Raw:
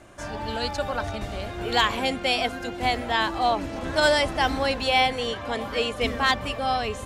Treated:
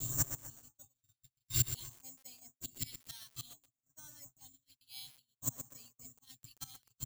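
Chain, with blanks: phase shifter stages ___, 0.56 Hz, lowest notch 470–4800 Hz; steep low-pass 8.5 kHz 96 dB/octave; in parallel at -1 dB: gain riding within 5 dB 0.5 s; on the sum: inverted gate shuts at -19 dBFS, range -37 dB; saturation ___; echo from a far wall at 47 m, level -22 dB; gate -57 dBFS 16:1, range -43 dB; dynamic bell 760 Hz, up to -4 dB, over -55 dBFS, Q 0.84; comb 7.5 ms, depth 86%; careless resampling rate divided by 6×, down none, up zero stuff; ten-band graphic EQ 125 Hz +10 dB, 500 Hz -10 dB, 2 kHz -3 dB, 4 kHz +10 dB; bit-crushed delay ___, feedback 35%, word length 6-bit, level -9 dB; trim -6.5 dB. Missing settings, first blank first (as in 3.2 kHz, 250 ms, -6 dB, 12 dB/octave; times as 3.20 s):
2, -24 dBFS, 123 ms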